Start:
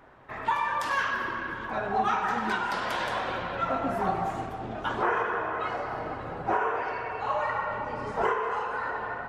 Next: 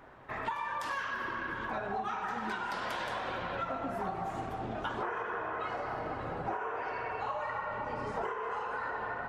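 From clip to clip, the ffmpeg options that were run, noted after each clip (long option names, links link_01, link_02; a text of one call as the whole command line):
ffmpeg -i in.wav -af "acompressor=threshold=-33dB:ratio=6" out.wav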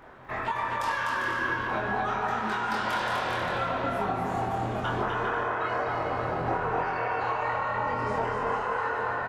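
ffmpeg -i in.wav -filter_complex "[0:a]asplit=2[link_01][link_02];[link_02]adelay=24,volume=-3dB[link_03];[link_01][link_03]amix=inputs=2:normalize=0,aecho=1:1:250|400|490|544|576.4:0.631|0.398|0.251|0.158|0.1,volume=3.5dB" out.wav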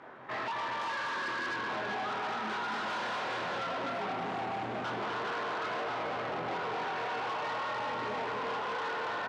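ffmpeg -i in.wav -af "volume=33dB,asoftclip=hard,volume=-33dB,highpass=180,lowpass=4700" out.wav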